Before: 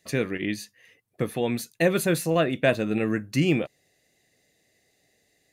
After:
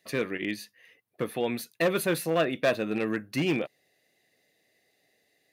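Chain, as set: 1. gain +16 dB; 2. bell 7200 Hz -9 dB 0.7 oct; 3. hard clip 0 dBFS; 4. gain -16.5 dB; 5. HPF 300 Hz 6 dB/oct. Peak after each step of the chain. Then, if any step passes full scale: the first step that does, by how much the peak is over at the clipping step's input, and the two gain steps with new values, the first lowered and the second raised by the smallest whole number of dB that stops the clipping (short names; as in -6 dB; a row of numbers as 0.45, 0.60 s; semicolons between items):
+8.5, +8.5, 0.0, -16.5, -13.0 dBFS; step 1, 8.5 dB; step 1 +7 dB, step 4 -7.5 dB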